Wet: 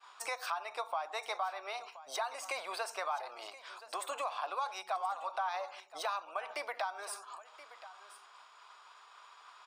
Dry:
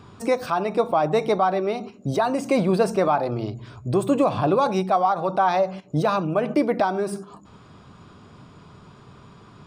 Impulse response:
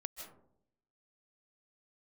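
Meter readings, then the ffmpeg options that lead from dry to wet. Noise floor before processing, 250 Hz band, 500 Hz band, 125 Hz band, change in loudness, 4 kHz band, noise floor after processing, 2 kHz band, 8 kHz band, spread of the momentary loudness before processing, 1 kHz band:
-49 dBFS, -40.0 dB, -21.5 dB, under -40 dB, -16.5 dB, -6.0 dB, -59 dBFS, -8.0 dB, -4.0 dB, 7 LU, -13.5 dB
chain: -filter_complex "[0:a]highpass=f=830:w=0.5412,highpass=f=830:w=1.3066,agate=range=-33dB:threshold=-51dB:ratio=3:detection=peak,acompressor=threshold=-37dB:ratio=3,asplit=2[a][b];[b]aecho=0:1:1025:0.158[c];[a][c]amix=inputs=2:normalize=0"

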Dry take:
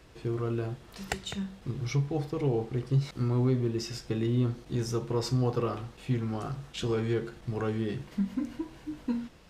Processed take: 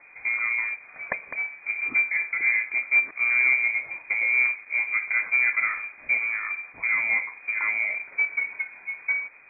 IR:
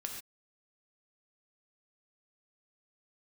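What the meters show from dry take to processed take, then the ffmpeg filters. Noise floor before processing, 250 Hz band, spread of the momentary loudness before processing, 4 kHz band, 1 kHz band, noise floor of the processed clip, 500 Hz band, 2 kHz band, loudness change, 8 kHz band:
-53 dBFS, under -20 dB, 9 LU, under -40 dB, +2.0 dB, -49 dBFS, under -15 dB, +26.0 dB, +8.0 dB, under -35 dB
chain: -af "acrusher=bits=4:mode=log:mix=0:aa=0.000001,lowpass=f=2.1k:t=q:w=0.5098,lowpass=f=2.1k:t=q:w=0.6013,lowpass=f=2.1k:t=q:w=0.9,lowpass=f=2.1k:t=q:w=2.563,afreqshift=-2500,volume=4.5dB"

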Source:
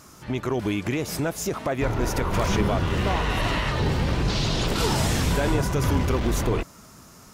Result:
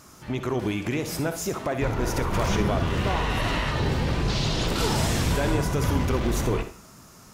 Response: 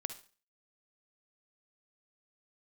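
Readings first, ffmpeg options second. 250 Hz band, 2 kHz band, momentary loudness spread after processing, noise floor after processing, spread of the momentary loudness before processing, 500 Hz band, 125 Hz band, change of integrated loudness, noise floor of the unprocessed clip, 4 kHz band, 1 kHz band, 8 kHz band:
-1.0 dB, -1.0 dB, 5 LU, -49 dBFS, 5 LU, -1.0 dB, -1.0 dB, -1.0 dB, -49 dBFS, -1.0 dB, -1.0 dB, -1.0 dB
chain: -filter_complex "[1:a]atrim=start_sample=2205[a];[0:a][a]afir=irnorm=-1:irlink=0"

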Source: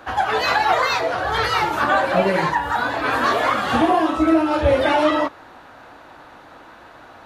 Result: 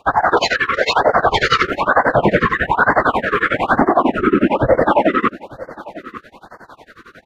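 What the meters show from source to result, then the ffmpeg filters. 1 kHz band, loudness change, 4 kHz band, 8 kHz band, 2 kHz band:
+3.0 dB, +3.5 dB, +2.5 dB, n/a, +5.0 dB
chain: -filter_complex "[0:a]afwtdn=0.0355,equalizer=f=1.5k:w=1.5:g=3,areverse,acompressor=threshold=-28dB:ratio=8,areverse,afftfilt=real='hypot(re,im)*cos(2*PI*random(0))':imag='hypot(re,im)*sin(2*PI*random(1))':win_size=512:overlap=0.75,tremolo=f=11:d=0.95,asplit=2[a][b];[b]aecho=0:1:897:0.0891[c];[a][c]amix=inputs=2:normalize=0,alimiter=level_in=30dB:limit=-1dB:release=50:level=0:latency=1,afftfilt=real='re*(1-between(b*sr/1024,710*pow(3100/710,0.5+0.5*sin(2*PI*1.1*pts/sr))/1.41,710*pow(3100/710,0.5+0.5*sin(2*PI*1.1*pts/sr))*1.41))':imag='im*(1-between(b*sr/1024,710*pow(3100/710,0.5+0.5*sin(2*PI*1.1*pts/sr))/1.41,710*pow(3100/710,0.5+0.5*sin(2*PI*1.1*pts/sr))*1.41))':win_size=1024:overlap=0.75,volume=-1dB"

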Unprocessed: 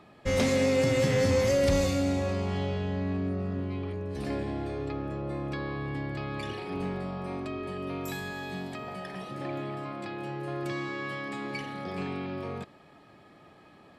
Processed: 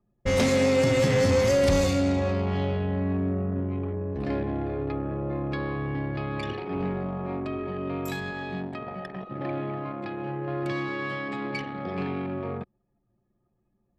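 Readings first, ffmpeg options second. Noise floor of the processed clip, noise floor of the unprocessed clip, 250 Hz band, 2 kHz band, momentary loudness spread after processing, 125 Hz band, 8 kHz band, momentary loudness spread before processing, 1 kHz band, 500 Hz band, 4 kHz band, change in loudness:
-74 dBFS, -55 dBFS, +3.5 dB, +3.0 dB, 12 LU, +3.5 dB, +2.5 dB, 13 LU, +3.5 dB, +3.5 dB, +2.5 dB, +3.5 dB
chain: -filter_complex "[0:a]anlmdn=1.58,asplit=2[a][b];[b]asoftclip=type=tanh:threshold=-24.5dB,volume=-3.5dB[c];[a][c]amix=inputs=2:normalize=0"

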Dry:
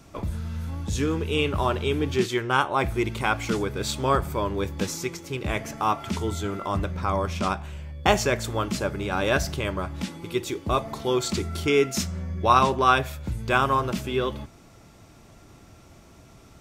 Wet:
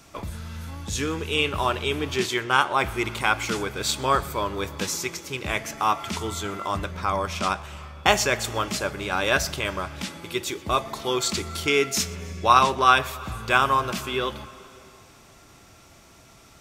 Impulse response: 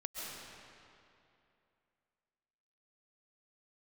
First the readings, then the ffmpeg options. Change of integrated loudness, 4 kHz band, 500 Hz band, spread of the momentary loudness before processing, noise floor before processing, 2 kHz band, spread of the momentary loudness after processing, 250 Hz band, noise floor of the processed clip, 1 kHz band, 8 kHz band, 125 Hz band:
+1.5 dB, +4.5 dB, -1.5 dB, 10 LU, -51 dBFS, +3.5 dB, 12 LU, -3.5 dB, -52 dBFS, +2.0 dB, +5.0 dB, -4.5 dB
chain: -filter_complex "[0:a]tiltshelf=f=690:g=-5,asplit=2[a][b];[1:a]atrim=start_sample=2205,adelay=124[c];[b][c]afir=irnorm=-1:irlink=0,volume=-18.5dB[d];[a][d]amix=inputs=2:normalize=0"

